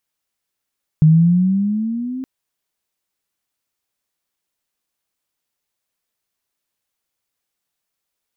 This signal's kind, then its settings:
pitch glide with a swell sine, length 1.22 s, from 153 Hz, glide +9.5 semitones, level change −17.5 dB, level −6 dB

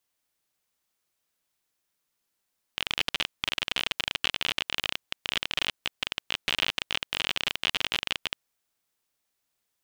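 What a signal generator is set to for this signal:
Geiger counter clicks 37 per second −9.5 dBFS 5.56 s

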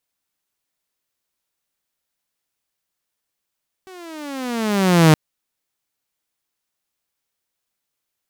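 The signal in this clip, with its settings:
pitch glide with a swell saw, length 1.27 s, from 383 Hz, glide −16 semitones, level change +31 dB, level −4.5 dB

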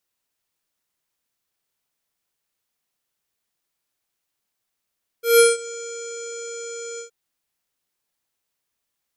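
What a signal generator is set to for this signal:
subtractive voice square A#4 24 dB per octave, low-pass 7,100 Hz, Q 11, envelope 1 octave, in 0.43 s, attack 161 ms, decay 0.18 s, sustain −23 dB, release 0.11 s, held 1.76 s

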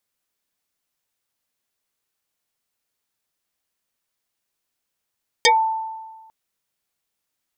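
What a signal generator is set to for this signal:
two-operator FM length 0.85 s, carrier 887 Hz, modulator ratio 1.54, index 5.5, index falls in 0.14 s exponential, decay 1.39 s, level −9.5 dB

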